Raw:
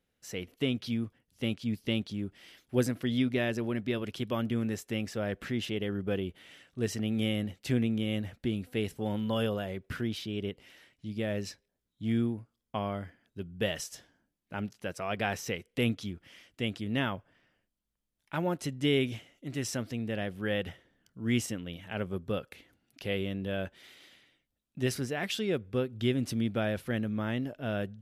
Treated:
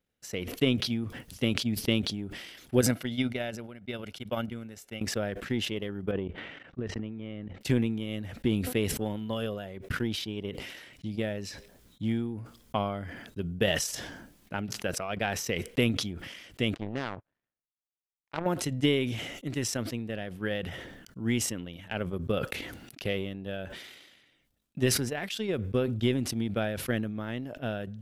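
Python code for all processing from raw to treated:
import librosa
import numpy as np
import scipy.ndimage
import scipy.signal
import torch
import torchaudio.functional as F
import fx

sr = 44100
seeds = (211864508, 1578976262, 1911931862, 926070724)

y = fx.chain(x, sr, fx.peak_eq(hz=64.0, db=-6.0, octaves=2.8),
    fx.comb(ms=1.4, depth=0.4),
    fx.upward_expand(threshold_db=-40.0, expansion=2.5), at=(2.81, 5.01))
y = fx.chain(y, sr, fx.lowpass(hz=2000.0, slope=12),
    fx.level_steps(step_db=12), at=(6.11, 7.61))
y = fx.chain(y, sr, fx.lowpass(hz=1800.0, slope=12),
    fx.power_curve(exponent=2.0), at=(16.74, 18.46))
y = fx.transient(y, sr, attack_db=10, sustain_db=-9)
y = fx.sustainer(y, sr, db_per_s=43.0)
y = F.gain(torch.from_numpy(y), -4.5).numpy()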